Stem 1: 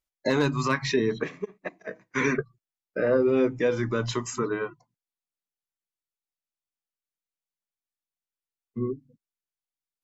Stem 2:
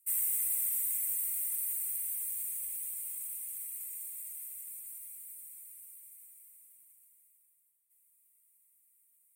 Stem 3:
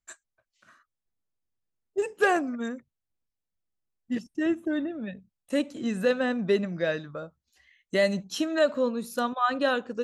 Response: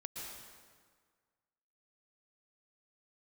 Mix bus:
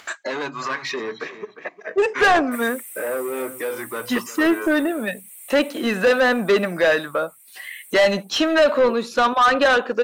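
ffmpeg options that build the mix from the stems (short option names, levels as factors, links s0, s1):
-filter_complex "[0:a]asoftclip=type=tanh:threshold=0.1,volume=0.266,asplit=2[s0][s1];[s1]volume=0.158[s2];[1:a]adelay=2450,volume=0.211[s3];[2:a]lowpass=5200,volume=1.33[s4];[s2]aecho=0:1:354:1[s5];[s0][s3][s4][s5]amix=inputs=4:normalize=0,highpass=f=300:p=1,acompressor=mode=upward:threshold=0.01:ratio=2.5,asplit=2[s6][s7];[s7]highpass=f=720:p=1,volume=15.8,asoftclip=type=tanh:threshold=0.447[s8];[s6][s8]amix=inputs=2:normalize=0,lowpass=f=2900:p=1,volume=0.501"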